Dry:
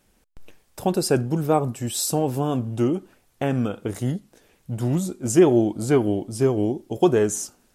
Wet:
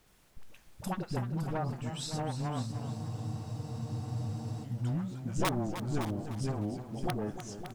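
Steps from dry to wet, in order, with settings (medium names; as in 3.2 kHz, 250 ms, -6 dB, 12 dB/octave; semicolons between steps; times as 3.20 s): one-sided wavefolder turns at -16 dBFS; low-pass that closes with the level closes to 870 Hz, closed at -16 dBFS; peaking EQ 390 Hz -14 dB 0.98 oct; in parallel at -3 dB: compression, threshold -38 dBFS, peak gain reduction 20 dB; on the sum: integer overflow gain 12 dB; phase dispersion highs, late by 63 ms, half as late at 440 Hz; added noise pink -58 dBFS; on a send: delay 560 ms -10.5 dB; on the sum: spectral freeze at 2.74 s, 1.90 s; modulated delay 305 ms, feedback 38%, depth 101 cents, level -10.5 dB; trim -8.5 dB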